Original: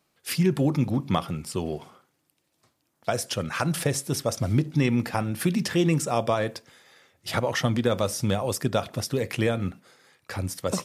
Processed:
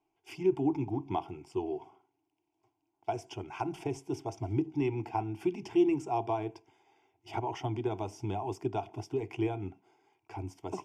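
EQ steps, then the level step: distance through air 200 m; static phaser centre 350 Hz, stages 8; static phaser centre 820 Hz, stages 8; 0.0 dB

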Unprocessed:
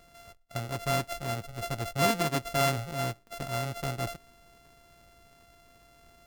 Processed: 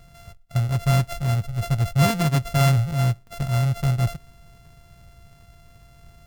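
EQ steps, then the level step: resonant low shelf 200 Hz +10.5 dB, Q 1.5; +3.0 dB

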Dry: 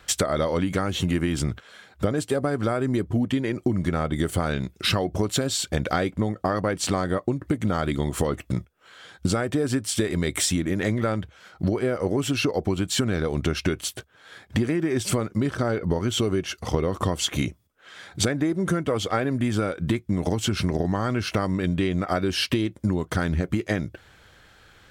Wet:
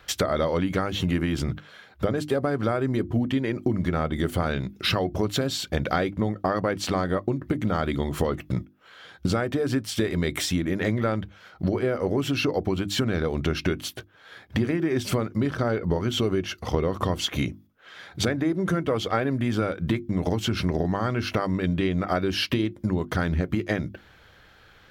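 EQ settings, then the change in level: peaking EQ 8.3 kHz -11 dB 0.72 oct; hum notches 50/100/150/200/250/300/350 Hz; 0.0 dB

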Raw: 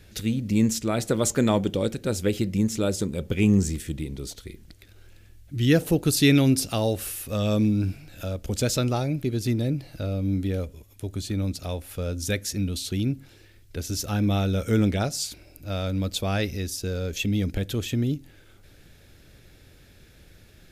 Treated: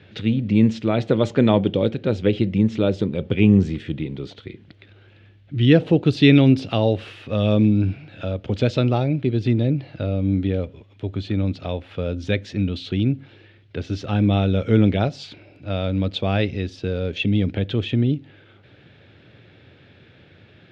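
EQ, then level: elliptic band-pass 100–3300 Hz, stop band 80 dB; dynamic bell 1.4 kHz, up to -4 dB, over -41 dBFS, Q 1.1; +6.0 dB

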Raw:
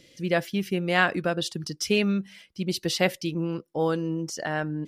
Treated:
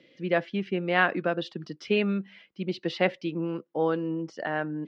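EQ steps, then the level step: distance through air 100 m; three-band isolator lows -23 dB, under 160 Hz, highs -24 dB, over 3.9 kHz; 0.0 dB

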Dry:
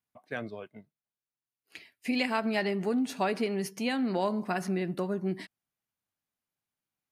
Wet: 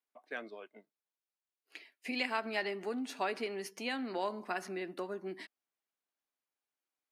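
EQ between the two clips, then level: high-pass 290 Hz 24 dB/octave; dynamic bell 510 Hz, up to -5 dB, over -44 dBFS, Q 0.8; treble shelf 6.4 kHz -7 dB; -2.0 dB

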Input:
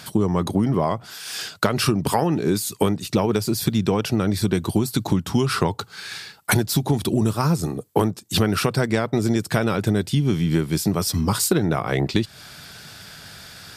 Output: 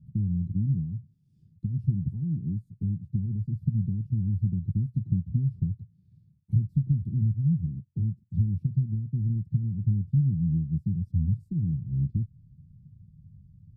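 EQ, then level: inverse Chebyshev low-pass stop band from 540 Hz, stop band 60 dB; 0.0 dB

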